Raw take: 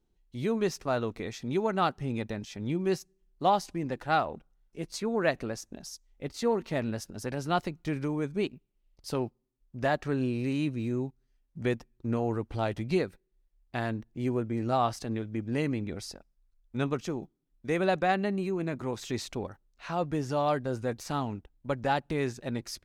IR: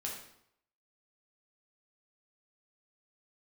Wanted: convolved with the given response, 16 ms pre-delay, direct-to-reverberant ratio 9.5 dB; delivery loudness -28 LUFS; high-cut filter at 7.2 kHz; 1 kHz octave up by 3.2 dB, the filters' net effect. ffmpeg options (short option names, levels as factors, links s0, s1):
-filter_complex "[0:a]lowpass=7200,equalizer=f=1000:t=o:g=4.5,asplit=2[s0][s1];[1:a]atrim=start_sample=2205,adelay=16[s2];[s1][s2]afir=irnorm=-1:irlink=0,volume=0.316[s3];[s0][s3]amix=inputs=2:normalize=0,volume=1.26"